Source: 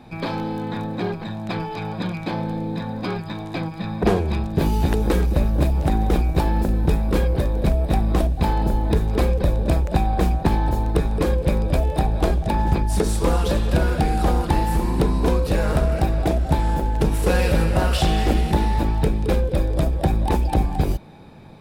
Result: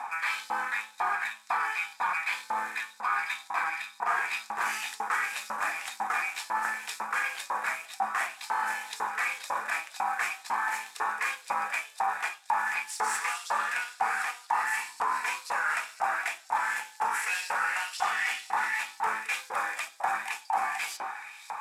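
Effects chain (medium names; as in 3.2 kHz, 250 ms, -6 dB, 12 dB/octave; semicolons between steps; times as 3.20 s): CVSD coder 64 kbps; reverberation RT60 1.0 s, pre-delay 3 ms, DRR 3 dB; in parallel at -5 dB: saturation -25.5 dBFS, distortion -9 dB; on the sum: LFO high-pass saw up 2 Hz 880–4700 Hz; FFT filter 580 Hz 0 dB, 880 Hz +12 dB, 2 kHz +3 dB, 3.7 kHz -9 dB, 5.3 kHz -3 dB; reverse; compression 4:1, threshold -30 dBFS, peak gain reduction 18.5 dB; reverse; tape noise reduction on one side only encoder only; trim +2 dB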